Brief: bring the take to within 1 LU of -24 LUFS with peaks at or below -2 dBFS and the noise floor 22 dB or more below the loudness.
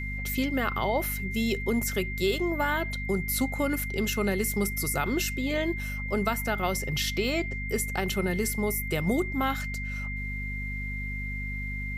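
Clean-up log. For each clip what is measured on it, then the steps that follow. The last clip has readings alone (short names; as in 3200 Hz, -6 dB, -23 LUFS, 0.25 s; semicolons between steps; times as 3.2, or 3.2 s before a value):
hum 50 Hz; harmonics up to 250 Hz; hum level -32 dBFS; steady tone 2100 Hz; tone level -35 dBFS; loudness -29.0 LUFS; peak -11.5 dBFS; loudness target -24.0 LUFS
-> notches 50/100/150/200/250 Hz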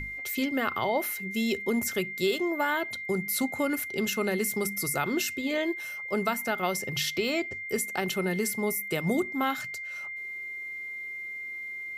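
hum none; steady tone 2100 Hz; tone level -35 dBFS
-> notch 2100 Hz, Q 30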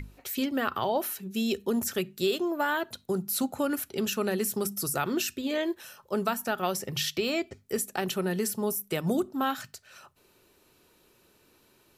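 steady tone none; loudness -30.0 LUFS; peak -13.0 dBFS; loudness target -24.0 LUFS
-> gain +6 dB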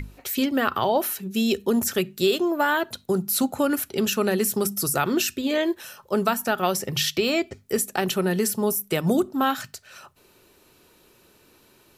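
loudness -24.0 LUFS; peak -7.0 dBFS; noise floor -58 dBFS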